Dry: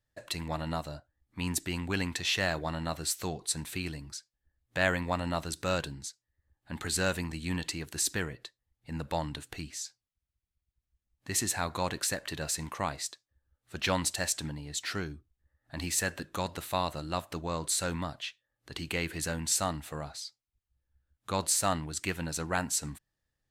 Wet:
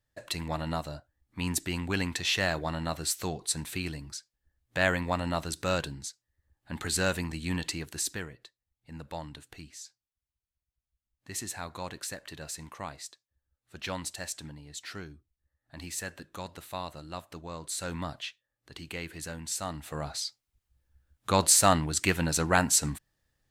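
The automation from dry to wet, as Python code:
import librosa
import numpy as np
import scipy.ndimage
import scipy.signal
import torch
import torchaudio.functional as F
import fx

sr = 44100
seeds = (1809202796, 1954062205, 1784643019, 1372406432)

y = fx.gain(x, sr, db=fx.line((7.78, 1.5), (8.34, -6.5), (17.67, -6.5), (18.13, 1.5), (18.73, -5.5), (19.6, -5.5), (20.18, 7.0)))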